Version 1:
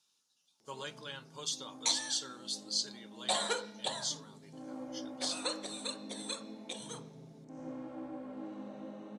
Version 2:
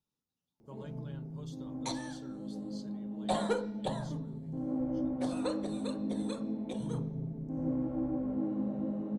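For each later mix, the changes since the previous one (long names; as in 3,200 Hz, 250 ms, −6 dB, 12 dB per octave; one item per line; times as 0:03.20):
speech −10.5 dB
master: remove meter weighting curve ITU-R 468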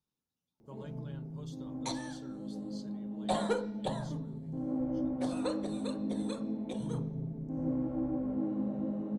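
nothing changed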